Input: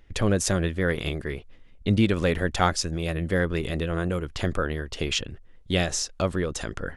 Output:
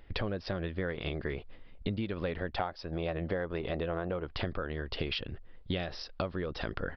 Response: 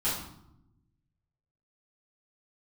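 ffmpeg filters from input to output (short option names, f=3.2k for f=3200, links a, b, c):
-af "asetnsamples=n=441:p=0,asendcmd='2.58 equalizer g 12;4.33 equalizer g 3',equalizer=f=730:w=0.83:g=4.5,acompressor=threshold=-30dB:ratio=16,aresample=11025,aresample=44100"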